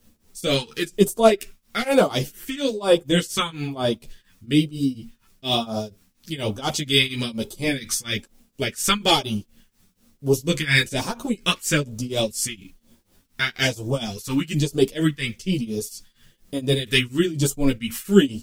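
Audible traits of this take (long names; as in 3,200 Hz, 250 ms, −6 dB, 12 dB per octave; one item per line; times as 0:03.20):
phaser sweep stages 2, 1.1 Hz, lowest notch 600–1,900 Hz
a quantiser's noise floor 12 bits, dither triangular
tremolo triangle 4.2 Hz, depth 95%
a shimmering, thickened sound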